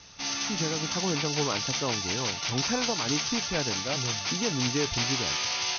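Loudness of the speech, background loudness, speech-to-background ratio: -33.0 LUFS, -28.5 LUFS, -4.5 dB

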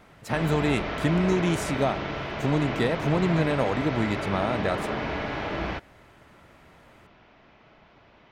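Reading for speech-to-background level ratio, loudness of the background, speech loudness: 4.0 dB, -31.0 LUFS, -27.0 LUFS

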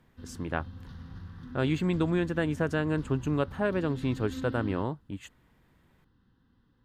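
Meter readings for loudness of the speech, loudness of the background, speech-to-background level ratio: -30.5 LUFS, -43.5 LUFS, 13.0 dB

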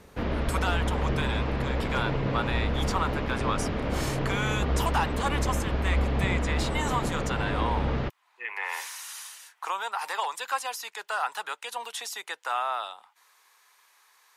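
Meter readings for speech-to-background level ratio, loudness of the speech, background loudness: -3.5 dB, -33.0 LUFS, -29.5 LUFS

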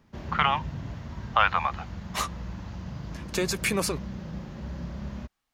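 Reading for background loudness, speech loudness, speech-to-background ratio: -38.0 LUFS, -28.0 LUFS, 10.0 dB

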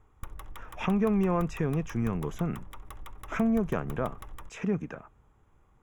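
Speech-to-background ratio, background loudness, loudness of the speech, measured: 17.5 dB, -47.5 LUFS, -30.0 LUFS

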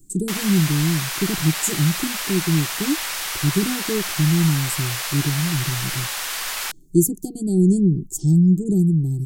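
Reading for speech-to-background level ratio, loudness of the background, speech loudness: 4.0 dB, -25.0 LUFS, -21.0 LUFS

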